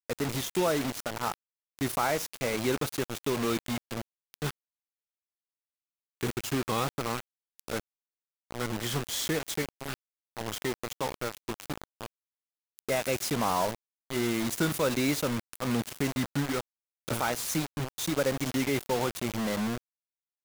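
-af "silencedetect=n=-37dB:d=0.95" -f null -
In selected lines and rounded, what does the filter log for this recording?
silence_start: 4.51
silence_end: 6.21 | silence_duration: 1.70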